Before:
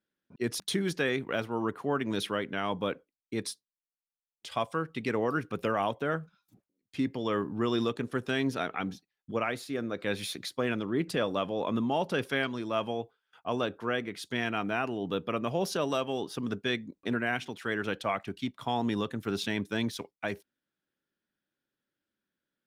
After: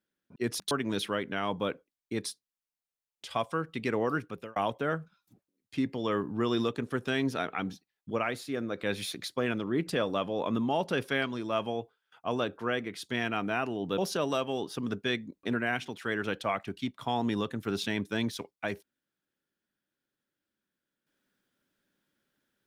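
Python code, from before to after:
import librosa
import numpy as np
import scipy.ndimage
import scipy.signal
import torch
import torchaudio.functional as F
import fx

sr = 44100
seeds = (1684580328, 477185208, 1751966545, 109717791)

y = fx.edit(x, sr, fx.cut(start_s=0.71, length_s=1.21),
    fx.fade_out_span(start_s=5.35, length_s=0.42),
    fx.cut(start_s=15.19, length_s=0.39), tone=tone)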